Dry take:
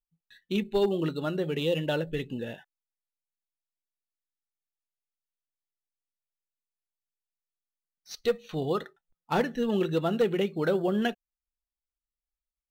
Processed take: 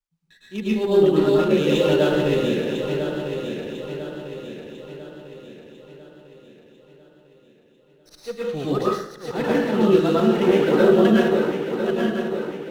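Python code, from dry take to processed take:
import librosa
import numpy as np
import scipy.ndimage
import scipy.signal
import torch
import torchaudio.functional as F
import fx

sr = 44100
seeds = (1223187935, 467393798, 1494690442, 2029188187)

y = fx.reverse_delay_fb(x, sr, ms=499, feedback_pct=69, wet_db=-6)
y = fx.auto_swell(y, sr, attack_ms=104.0)
y = fx.rev_plate(y, sr, seeds[0], rt60_s=0.68, hf_ratio=0.75, predelay_ms=95, drr_db=-7.0)
y = fx.running_max(y, sr, window=3)
y = F.gain(torch.from_numpy(y), 1.0).numpy()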